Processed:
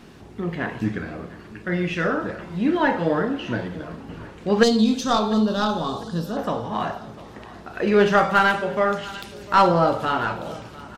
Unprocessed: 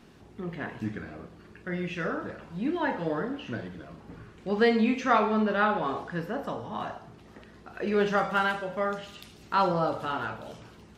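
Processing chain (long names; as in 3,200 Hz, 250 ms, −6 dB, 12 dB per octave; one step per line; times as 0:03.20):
stylus tracing distortion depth 0.04 ms
0:04.63–0:06.37: drawn EQ curve 170 Hz 0 dB, 400 Hz −6 dB, 1,200 Hz −7 dB, 2,200 Hz −22 dB, 3,600 Hz +6 dB
on a send: repeating echo 700 ms, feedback 40%, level −19 dB
on the sum: level +8.5 dB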